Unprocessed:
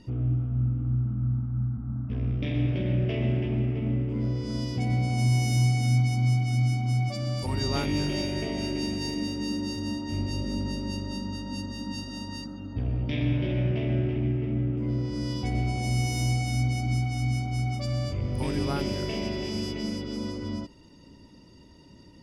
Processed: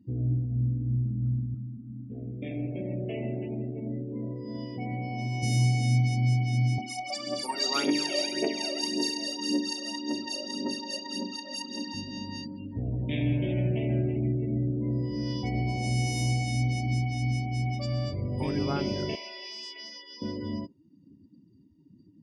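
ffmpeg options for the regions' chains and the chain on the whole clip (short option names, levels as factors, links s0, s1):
-filter_complex "[0:a]asettb=1/sr,asplit=3[s0][s1][s2];[s0]atrim=end=1.544[s3];[s1]atrim=start=1.54:end=5.43,asetpts=PTS-STARTPTS,afade=t=in:d=0.004:c=qsin,afade=t=out:st=3.886:d=0.004:c=qsin,highpass=f=310:p=1,highshelf=f=3600:g=-11.5[s4];[s2]atrim=start=5.426[s5];[s3][s4]acrossfade=d=0.004:c1=hsin:c2=qsin[s6];[s6][s5]acrossfade=d=0.004:c1=qsin:c2=hsin,asettb=1/sr,asplit=3[s7][s8][s9];[s7]atrim=end=6.784[s10];[s8]atrim=start=6.78:end=11.94,asetpts=PTS-STARTPTS,afade=t=in:d=0.004:c=qsin,afade=t=out:st=5.156:d=0.004:c=qsin,highpass=f=290:w=0.5412,highpass=f=290:w=1.3066,highshelf=f=7000:g=10.5,aphaser=in_gain=1:out_gain=1:delay=1.8:decay=0.68:speed=1.8:type=triangular[s11];[s9]atrim=start=11.936[s12];[s10][s11]acrossfade=d=0.004:c1=hsin:c2=qsin[s13];[s13][s12]acrossfade=d=0.004:c1=qsin:c2=hsin,asettb=1/sr,asplit=3[s14][s15][s16];[s14]atrim=end=19.154[s17];[s15]atrim=start=19.15:end=20.22,asetpts=PTS-STARTPTS,afade=t=in:d=0.004:c=qsin,afade=t=out:st=1.066:d=0.004:c=qsin,highpass=960,aeval=exprs='0.0211*(abs(mod(val(0)/0.0211+3,4)-2)-1)':c=same[s18];[s16]atrim=start=20.216[s19];[s17][s18]acrossfade=d=0.004:c1=hsin:c2=qsin[s20];[s20][s19]acrossfade=d=0.004:c1=qsin:c2=hsin,highpass=93,afftdn=nr=29:nf=-42"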